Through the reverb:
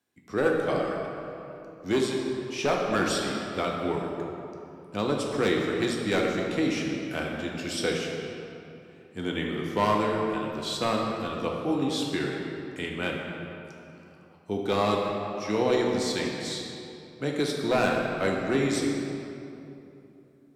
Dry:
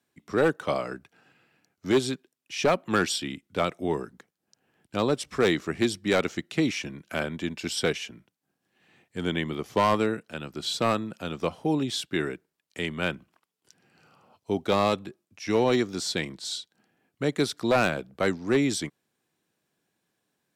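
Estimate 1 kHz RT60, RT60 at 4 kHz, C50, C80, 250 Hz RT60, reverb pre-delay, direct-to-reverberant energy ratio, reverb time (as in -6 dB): 2.8 s, 1.7 s, 1.0 dB, 2.5 dB, 3.3 s, 3 ms, -1.0 dB, 2.9 s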